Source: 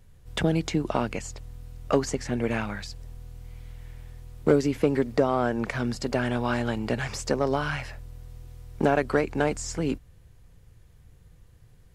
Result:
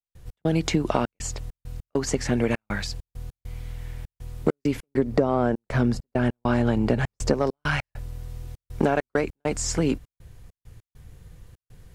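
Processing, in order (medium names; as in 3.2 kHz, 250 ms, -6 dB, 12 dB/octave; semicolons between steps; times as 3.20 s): 4.87–7.34 s: tilt shelf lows +5 dB, about 940 Hz; compression 4:1, threshold -25 dBFS, peak gain reduction 10.5 dB; trance gate ".x.xxxx.xx" 100 bpm -60 dB; trim +7 dB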